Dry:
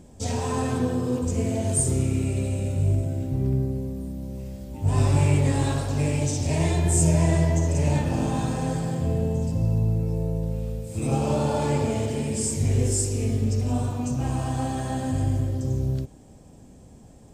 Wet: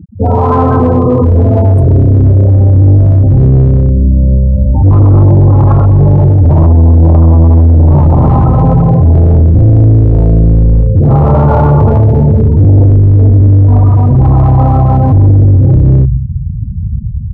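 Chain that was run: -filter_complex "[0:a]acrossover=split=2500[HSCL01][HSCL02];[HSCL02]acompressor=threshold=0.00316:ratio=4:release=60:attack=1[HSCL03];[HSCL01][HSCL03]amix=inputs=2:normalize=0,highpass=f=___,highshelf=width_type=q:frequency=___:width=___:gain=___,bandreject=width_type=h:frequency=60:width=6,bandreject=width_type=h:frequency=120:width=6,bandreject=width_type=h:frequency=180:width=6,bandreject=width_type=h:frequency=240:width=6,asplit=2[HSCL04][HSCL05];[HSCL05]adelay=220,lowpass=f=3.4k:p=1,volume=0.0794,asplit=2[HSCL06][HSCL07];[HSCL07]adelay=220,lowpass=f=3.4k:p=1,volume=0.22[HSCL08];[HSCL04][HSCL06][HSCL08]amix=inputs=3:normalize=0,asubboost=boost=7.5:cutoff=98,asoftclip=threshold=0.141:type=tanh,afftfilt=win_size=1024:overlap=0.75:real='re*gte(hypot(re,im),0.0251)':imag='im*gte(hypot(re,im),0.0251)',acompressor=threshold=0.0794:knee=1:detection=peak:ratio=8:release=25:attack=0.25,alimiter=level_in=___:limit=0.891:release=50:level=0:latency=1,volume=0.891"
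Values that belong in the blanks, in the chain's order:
63, 1.6k, 3, -6.5, 25.1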